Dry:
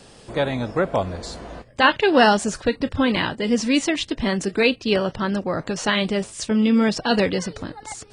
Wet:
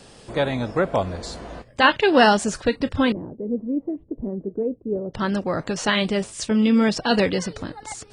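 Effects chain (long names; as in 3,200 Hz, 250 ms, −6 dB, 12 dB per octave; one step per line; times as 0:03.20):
0:03.12–0:05.14: transistor ladder low-pass 570 Hz, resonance 30%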